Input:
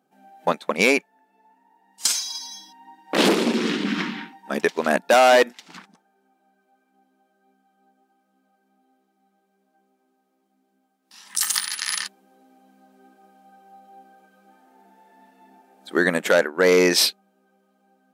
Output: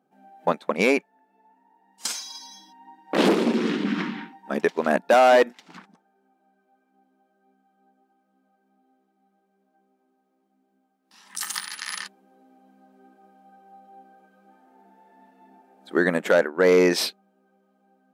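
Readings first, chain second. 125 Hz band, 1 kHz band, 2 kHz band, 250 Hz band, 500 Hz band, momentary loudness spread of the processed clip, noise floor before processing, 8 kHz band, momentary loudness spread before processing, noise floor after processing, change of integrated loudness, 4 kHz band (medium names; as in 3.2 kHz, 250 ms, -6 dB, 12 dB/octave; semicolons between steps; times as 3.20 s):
0.0 dB, -1.0 dB, -4.0 dB, 0.0 dB, -0.5 dB, 15 LU, -70 dBFS, -8.5 dB, 14 LU, -71 dBFS, -2.0 dB, -7.0 dB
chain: treble shelf 2.3 kHz -9.5 dB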